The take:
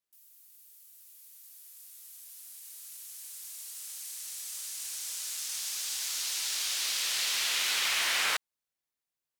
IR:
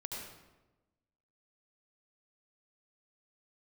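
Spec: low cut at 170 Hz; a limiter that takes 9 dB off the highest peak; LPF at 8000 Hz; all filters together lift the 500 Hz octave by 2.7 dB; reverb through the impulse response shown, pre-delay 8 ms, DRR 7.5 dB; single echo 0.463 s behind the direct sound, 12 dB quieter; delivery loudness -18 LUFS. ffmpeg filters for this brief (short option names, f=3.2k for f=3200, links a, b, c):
-filter_complex "[0:a]highpass=170,lowpass=8k,equalizer=f=500:t=o:g=3.5,alimiter=level_in=2dB:limit=-24dB:level=0:latency=1,volume=-2dB,aecho=1:1:463:0.251,asplit=2[a][b];[1:a]atrim=start_sample=2205,adelay=8[c];[b][c]afir=irnorm=-1:irlink=0,volume=-7dB[d];[a][d]amix=inputs=2:normalize=0,volume=16.5dB"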